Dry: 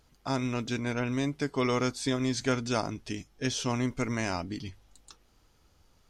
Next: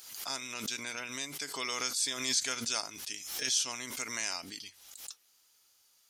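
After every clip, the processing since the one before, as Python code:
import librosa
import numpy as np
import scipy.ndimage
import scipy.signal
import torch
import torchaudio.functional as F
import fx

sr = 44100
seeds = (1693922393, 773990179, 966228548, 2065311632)

y = np.diff(x, prepend=0.0)
y = fx.pre_swell(y, sr, db_per_s=59.0)
y = y * librosa.db_to_amplitude(8.0)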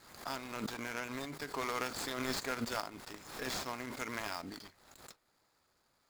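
y = scipy.signal.medfilt(x, 15)
y = y * librosa.db_to_amplitude(3.5)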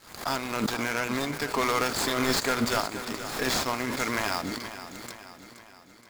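y = fx.leveller(x, sr, passes=2)
y = fx.echo_feedback(y, sr, ms=474, feedback_pct=52, wet_db=-12)
y = y * librosa.db_to_amplitude(4.5)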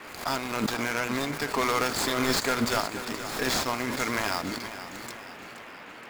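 y = fx.dmg_noise_band(x, sr, seeds[0], low_hz=170.0, high_hz=2500.0, level_db=-45.0)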